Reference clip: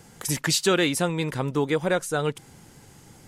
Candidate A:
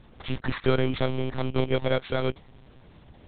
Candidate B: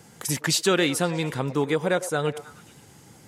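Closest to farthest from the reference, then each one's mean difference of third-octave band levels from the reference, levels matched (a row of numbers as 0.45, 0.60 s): B, A; 1.5, 10.0 dB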